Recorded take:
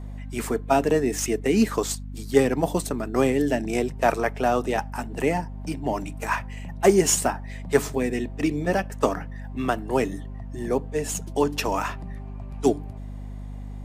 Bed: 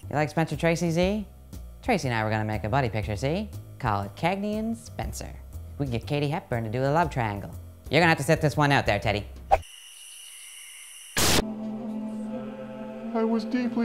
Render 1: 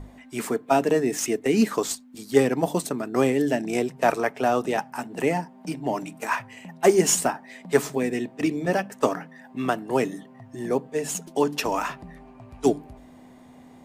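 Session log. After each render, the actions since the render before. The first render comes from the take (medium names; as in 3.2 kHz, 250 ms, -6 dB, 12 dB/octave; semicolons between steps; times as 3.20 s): hum notches 50/100/150/200 Hz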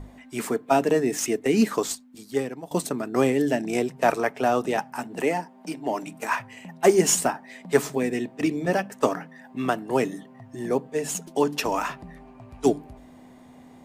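1.80–2.71 s: fade out, to -20 dB; 5.21–6.07 s: high-pass 240 Hz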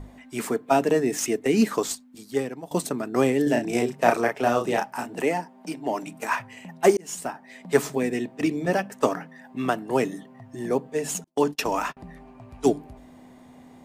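3.43–5.17 s: doubling 34 ms -4 dB; 6.97–7.68 s: fade in; 11.24–11.97 s: gate -32 dBFS, range -34 dB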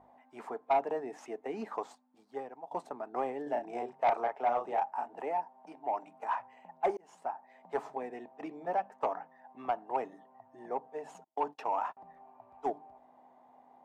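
band-pass filter 820 Hz, Q 3.8; saturation -20 dBFS, distortion -15 dB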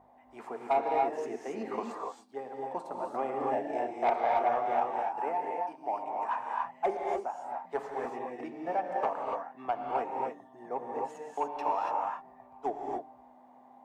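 gated-style reverb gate 310 ms rising, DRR -0.5 dB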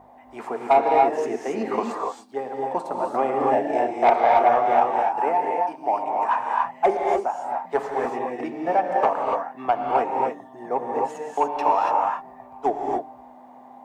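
trim +10.5 dB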